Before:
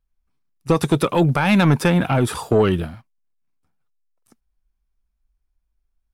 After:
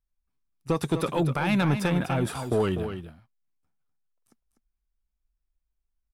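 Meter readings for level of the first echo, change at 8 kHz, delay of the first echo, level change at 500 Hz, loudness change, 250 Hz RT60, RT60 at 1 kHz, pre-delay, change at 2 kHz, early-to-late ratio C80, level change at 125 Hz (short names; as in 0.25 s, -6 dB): -9.0 dB, -8.0 dB, 0.248 s, -8.0 dB, -8.0 dB, none, none, none, -8.0 dB, none, -8.0 dB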